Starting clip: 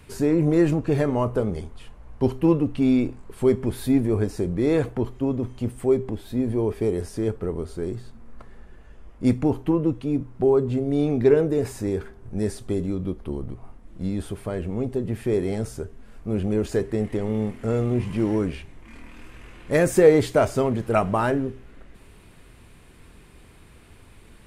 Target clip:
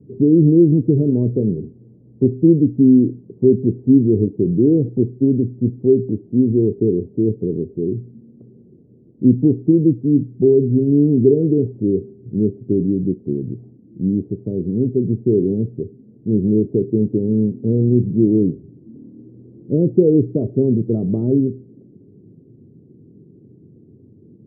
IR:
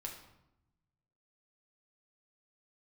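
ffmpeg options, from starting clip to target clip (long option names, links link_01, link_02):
-filter_complex "[0:a]asplit=2[link_01][link_02];[link_02]alimiter=limit=-13dB:level=0:latency=1:release=192,volume=2dB[link_03];[link_01][link_03]amix=inputs=2:normalize=0,asuperpass=centerf=210:order=8:qfactor=0.71,volume=2.5dB"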